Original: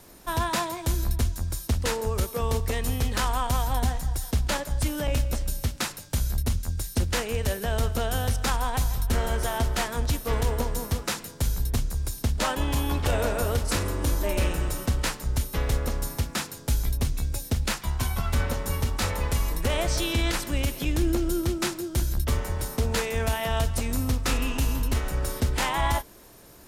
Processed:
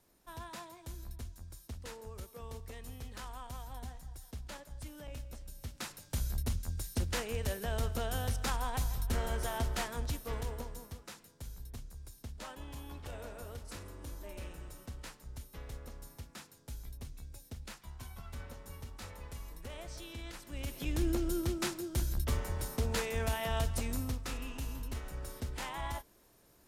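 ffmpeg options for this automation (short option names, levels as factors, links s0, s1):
-af "volume=1.58,afade=t=in:st=5.54:d=0.66:silence=0.281838,afade=t=out:st=9.74:d=1.23:silence=0.266073,afade=t=in:st=20.44:d=0.58:silence=0.237137,afade=t=out:st=23.85:d=0.43:silence=0.446684"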